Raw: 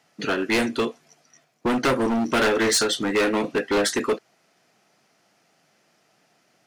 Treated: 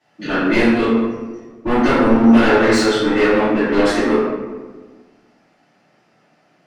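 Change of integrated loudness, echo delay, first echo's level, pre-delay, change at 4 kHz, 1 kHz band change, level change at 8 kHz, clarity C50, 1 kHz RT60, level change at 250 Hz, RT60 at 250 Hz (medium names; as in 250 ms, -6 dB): +7.5 dB, no echo, no echo, 3 ms, +0.5 dB, +7.0 dB, -5.0 dB, -2.0 dB, 1.3 s, +11.0 dB, 1.8 s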